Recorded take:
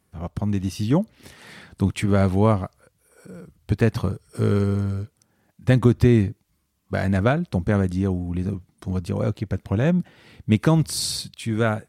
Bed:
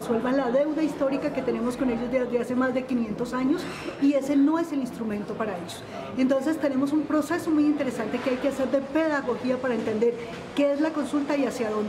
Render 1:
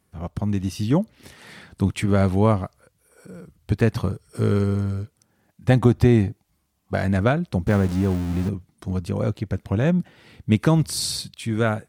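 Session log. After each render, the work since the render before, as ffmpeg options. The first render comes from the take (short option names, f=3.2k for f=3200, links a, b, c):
-filter_complex "[0:a]asettb=1/sr,asplit=3[a][b][c];[a]atrim=end=5.694[d];[b]atrim=start=5.69:end=6.97,asetpts=PTS-STARTPTS,afade=t=in:d=0.004:c=qsin,afade=t=out:st=1.276:d=0.004:c=qsin,equalizer=f=750:t=o:w=0.39:g=9[e];[c]atrim=start=6.966[f];[d][e]acrossfade=d=0.004:c1=hsin:c2=qsin[g];[g][f]acrossfade=d=0.004:c1=qsin:c2=hsin,asettb=1/sr,asplit=3[h][i][j];[h]atrim=end=7.674[k];[i]atrim=start=7.67:end=8.49,asetpts=PTS-STARTPTS,afade=t=in:d=0.004:c=qsin,afade=t=out:st=0.816:d=0.004:c=qsin,aeval=exprs='val(0)+0.5*0.0355*sgn(val(0))':c=same[l];[j]atrim=start=8.486[m];[k][l]acrossfade=d=0.004:c1=hsin:c2=qsin[n];[n][m]acrossfade=d=0.004:c1=qsin:c2=hsin"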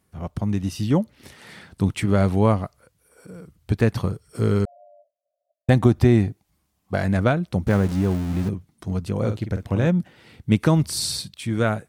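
-filter_complex "[0:a]asettb=1/sr,asplit=3[a][b][c];[a]atrim=end=4.654[d];[b]atrim=start=4.65:end=5.69,asetpts=PTS-STARTPTS,afade=t=in:d=0.004:c=qsin,afade=t=out:st=1.036:d=0.004:c=qsin,asuperpass=centerf=630:order=20:qfactor=3.8[e];[c]atrim=start=5.686[f];[d][e]acrossfade=d=0.004:c1=hsin:c2=qsin[g];[g][f]acrossfade=d=0.004:c1=qsin:c2=hsin,asettb=1/sr,asplit=3[h][i][j];[h]atrim=end=9.174[k];[i]atrim=start=9.17:end=9.87,asetpts=PTS-STARTPTS,afade=t=in:d=0.004:c=qsin,afade=t=out:st=0.696:d=0.004:c=qsin,asplit=2[l][m];[m]adelay=47,volume=-8dB[n];[l][n]amix=inputs=2:normalize=0,atrim=end_sample=30870[o];[j]atrim=start=9.866[p];[k][o]acrossfade=d=0.004:c1=hsin:c2=qsin[q];[q][p]acrossfade=d=0.004:c1=qsin:c2=hsin"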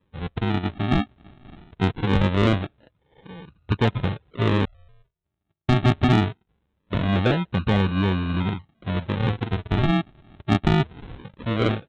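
-af "aresample=8000,acrusher=samples=11:mix=1:aa=0.000001:lfo=1:lforange=11:lforate=0.22,aresample=44100,asoftclip=type=tanh:threshold=-9.5dB"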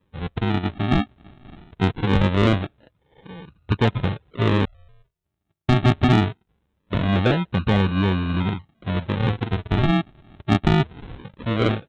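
-af "volume=1.5dB"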